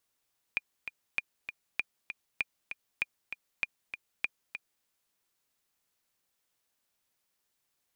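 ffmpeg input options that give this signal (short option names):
-f lavfi -i "aevalsrc='pow(10,(-15.5-9*gte(mod(t,2*60/196),60/196))/20)*sin(2*PI*2420*mod(t,60/196))*exp(-6.91*mod(t,60/196)/0.03)':d=4.28:s=44100"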